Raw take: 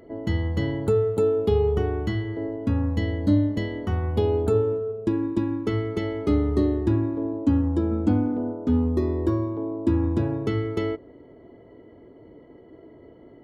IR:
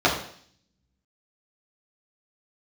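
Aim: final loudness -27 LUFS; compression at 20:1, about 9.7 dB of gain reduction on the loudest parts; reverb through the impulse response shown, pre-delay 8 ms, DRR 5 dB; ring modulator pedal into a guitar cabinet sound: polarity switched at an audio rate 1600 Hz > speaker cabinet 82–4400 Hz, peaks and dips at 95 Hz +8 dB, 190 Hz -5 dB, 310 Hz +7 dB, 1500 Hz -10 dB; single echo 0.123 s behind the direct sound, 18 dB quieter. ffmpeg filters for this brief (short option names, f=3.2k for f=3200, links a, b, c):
-filter_complex "[0:a]acompressor=threshold=-25dB:ratio=20,aecho=1:1:123:0.126,asplit=2[a][b];[1:a]atrim=start_sample=2205,adelay=8[c];[b][c]afir=irnorm=-1:irlink=0,volume=-24dB[d];[a][d]amix=inputs=2:normalize=0,aeval=exprs='val(0)*sgn(sin(2*PI*1600*n/s))':c=same,highpass=82,equalizer=f=95:t=q:w=4:g=8,equalizer=f=190:t=q:w=4:g=-5,equalizer=f=310:t=q:w=4:g=7,equalizer=f=1.5k:t=q:w=4:g=-10,lowpass=f=4.4k:w=0.5412,lowpass=f=4.4k:w=1.3066,volume=3.5dB"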